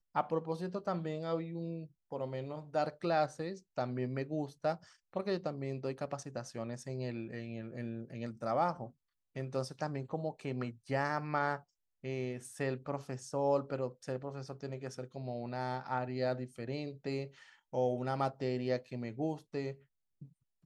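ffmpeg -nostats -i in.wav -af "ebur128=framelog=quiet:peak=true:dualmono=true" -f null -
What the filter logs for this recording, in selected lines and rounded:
Integrated loudness:
  I:         -35.0 LUFS
  Threshold: -45.2 LUFS
Loudness range:
  LRA:         2.8 LU
  Threshold: -55.2 LUFS
  LRA low:   -36.7 LUFS
  LRA high:  -33.9 LUFS
True peak:
  Peak:      -18.7 dBFS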